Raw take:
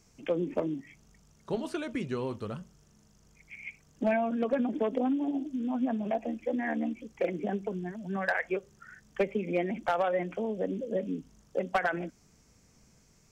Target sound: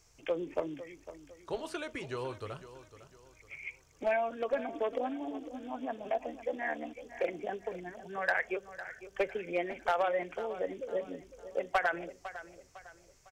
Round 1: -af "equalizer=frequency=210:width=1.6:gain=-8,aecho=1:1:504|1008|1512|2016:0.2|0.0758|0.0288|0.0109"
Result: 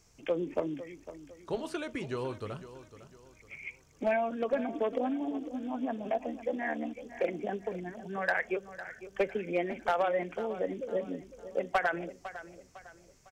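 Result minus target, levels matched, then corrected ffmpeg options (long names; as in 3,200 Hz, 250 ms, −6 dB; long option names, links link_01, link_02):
250 Hz band +4.0 dB
-af "equalizer=frequency=210:width=1.6:gain=-19,aecho=1:1:504|1008|1512|2016:0.2|0.0758|0.0288|0.0109"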